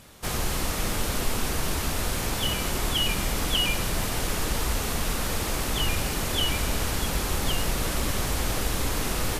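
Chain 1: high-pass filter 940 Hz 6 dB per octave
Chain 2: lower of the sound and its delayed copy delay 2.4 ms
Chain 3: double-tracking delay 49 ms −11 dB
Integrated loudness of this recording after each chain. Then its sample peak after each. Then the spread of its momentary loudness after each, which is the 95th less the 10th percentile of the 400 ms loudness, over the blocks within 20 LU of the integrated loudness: −29.0, −28.5, −27.0 LKFS; −15.0, −13.5, −11.0 dBFS; 4, 4, 3 LU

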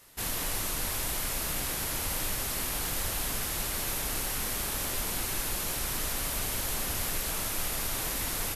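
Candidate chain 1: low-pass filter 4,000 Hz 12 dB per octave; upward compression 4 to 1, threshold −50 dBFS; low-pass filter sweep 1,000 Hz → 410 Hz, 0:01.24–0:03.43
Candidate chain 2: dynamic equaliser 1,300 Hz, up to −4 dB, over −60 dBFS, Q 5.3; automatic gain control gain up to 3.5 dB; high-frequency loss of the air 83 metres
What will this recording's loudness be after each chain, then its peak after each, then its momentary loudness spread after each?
−38.5, −33.0 LKFS; −22.5, −18.5 dBFS; 3, 1 LU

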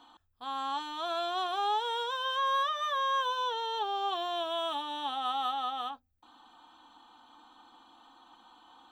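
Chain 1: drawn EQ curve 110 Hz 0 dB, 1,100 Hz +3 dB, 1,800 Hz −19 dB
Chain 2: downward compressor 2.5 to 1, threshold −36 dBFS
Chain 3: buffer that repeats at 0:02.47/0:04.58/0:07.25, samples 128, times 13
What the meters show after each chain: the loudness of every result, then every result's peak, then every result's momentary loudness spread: −31.0, −37.0, −32.0 LKFS; −20.5, −26.0, −20.0 dBFS; 8, 10, 6 LU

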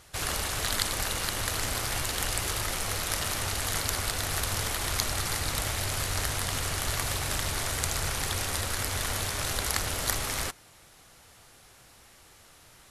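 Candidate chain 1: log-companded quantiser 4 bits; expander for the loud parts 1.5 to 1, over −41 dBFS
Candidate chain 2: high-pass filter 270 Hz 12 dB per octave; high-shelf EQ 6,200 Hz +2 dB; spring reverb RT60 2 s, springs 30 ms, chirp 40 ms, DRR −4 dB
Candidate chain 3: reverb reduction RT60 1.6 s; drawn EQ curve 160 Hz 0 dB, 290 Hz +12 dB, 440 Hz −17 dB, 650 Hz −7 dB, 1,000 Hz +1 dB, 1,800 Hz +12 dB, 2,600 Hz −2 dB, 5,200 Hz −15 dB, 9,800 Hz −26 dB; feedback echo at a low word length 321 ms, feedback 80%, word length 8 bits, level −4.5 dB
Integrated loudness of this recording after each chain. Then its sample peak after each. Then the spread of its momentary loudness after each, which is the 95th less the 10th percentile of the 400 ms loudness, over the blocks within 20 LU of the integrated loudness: −31.5, −26.5, −29.5 LKFS; −6.5, −5.0, −7.0 dBFS; 2, 1, 10 LU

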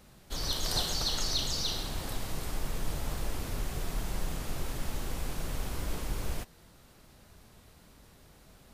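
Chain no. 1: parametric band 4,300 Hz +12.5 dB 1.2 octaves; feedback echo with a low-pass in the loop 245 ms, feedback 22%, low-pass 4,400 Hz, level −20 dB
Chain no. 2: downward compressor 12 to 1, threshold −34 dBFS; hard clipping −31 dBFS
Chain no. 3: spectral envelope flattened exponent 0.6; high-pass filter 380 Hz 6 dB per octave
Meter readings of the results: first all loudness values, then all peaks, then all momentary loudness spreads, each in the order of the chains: −26.0, −41.5, −32.0 LKFS; −8.0, −31.0, −14.5 dBFS; 15, 20, 5 LU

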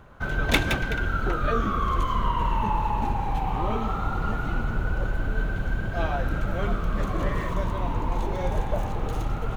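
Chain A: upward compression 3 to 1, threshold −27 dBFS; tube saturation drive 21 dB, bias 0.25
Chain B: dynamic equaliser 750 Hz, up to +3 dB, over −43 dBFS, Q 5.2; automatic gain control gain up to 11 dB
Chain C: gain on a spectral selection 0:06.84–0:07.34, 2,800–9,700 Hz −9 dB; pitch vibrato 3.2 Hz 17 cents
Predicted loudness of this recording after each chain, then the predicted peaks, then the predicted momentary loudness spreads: −30.5, −18.5, −27.5 LKFS; −18.0, −2.0, −6.0 dBFS; 4, 4, 4 LU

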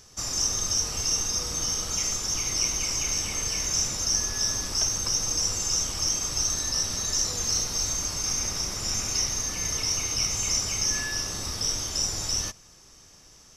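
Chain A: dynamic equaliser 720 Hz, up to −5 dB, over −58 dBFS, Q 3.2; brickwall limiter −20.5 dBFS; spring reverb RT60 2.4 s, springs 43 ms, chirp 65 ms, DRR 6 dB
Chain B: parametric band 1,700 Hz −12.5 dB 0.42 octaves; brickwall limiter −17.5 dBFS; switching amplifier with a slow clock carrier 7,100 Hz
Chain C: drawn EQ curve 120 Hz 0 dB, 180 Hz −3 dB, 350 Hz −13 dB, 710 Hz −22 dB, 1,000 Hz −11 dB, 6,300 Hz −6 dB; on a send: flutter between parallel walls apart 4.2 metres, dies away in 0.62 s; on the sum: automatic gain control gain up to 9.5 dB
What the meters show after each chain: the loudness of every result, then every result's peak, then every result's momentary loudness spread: −27.5, −35.0, −18.0 LKFS; −19.0, −18.5, −4.5 dBFS; 2, 1, 3 LU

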